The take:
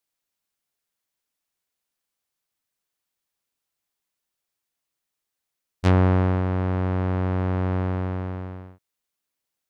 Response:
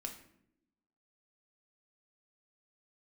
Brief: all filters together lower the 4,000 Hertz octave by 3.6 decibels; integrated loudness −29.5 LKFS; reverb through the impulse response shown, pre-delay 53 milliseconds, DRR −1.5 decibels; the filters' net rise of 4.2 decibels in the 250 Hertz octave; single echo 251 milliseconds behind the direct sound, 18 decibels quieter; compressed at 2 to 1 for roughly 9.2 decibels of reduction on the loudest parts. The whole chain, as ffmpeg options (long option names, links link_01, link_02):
-filter_complex "[0:a]equalizer=frequency=250:width_type=o:gain=6,equalizer=frequency=4000:width_type=o:gain=-5,acompressor=threshold=-29dB:ratio=2,aecho=1:1:251:0.126,asplit=2[link_01][link_02];[1:a]atrim=start_sample=2205,adelay=53[link_03];[link_02][link_03]afir=irnorm=-1:irlink=0,volume=3.5dB[link_04];[link_01][link_04]amix=inputs=2:normalize=0,volume=-3dB"